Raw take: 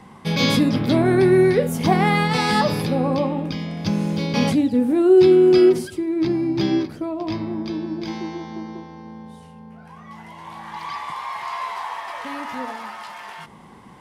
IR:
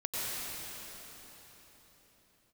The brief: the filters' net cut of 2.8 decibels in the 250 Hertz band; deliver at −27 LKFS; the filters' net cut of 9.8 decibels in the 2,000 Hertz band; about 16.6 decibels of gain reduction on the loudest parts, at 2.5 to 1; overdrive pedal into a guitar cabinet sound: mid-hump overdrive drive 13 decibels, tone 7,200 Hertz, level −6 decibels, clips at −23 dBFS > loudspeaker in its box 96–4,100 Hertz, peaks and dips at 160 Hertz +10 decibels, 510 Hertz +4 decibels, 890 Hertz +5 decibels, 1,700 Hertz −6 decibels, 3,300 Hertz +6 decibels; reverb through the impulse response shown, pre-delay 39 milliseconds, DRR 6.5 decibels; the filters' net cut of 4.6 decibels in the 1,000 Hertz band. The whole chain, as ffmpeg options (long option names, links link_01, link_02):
-filter_complex "[0:a]equalizer=frequency=250:width_type=o:gain=-8.5,equalizer=frequency=1000:width_type=o:gain=-8,equalizer=frequency=2000:width_type=o:gain=-7.5,acompressor=threshold=-41dB:ratio=2.5,asplit=2[link_01][link_02];[1:a]atrim=start_sample=2205,adelay=39[link_03];[link_02][link_03]afir=irnorm=-1:irlink=0,volume=-13dB[link_04];[link_01][link_04]amix=inputs=2:normalize=0,asplit=2[link_05][link_06];[link_06]highpass=frequency=720:poles=1,volume=13dB,asoftclip=type=tanh:threshold=-23dB[link_07];[link_05][link_07]amix=inputs=2:normalize=0,lowpass=frequency=7200:poles=1,volume=-6dB,highpass=96,equalizer=frequency=160:width_type=q:width=4:gain=10,equalizer=frequency=510:width_type=q:width=4:gain=4,equalizer=frequency=890:width_type=q:width=4:gain=5,equalizer=frequency=1700:width_type=q:width=4:gain=-6,equalizer=frequency=3300:width_type=q:width=4:gain=6,lowpass=frequency=4100:width=0.5412,lowpass=frequency=4100:width=1.3066,volume=7dB"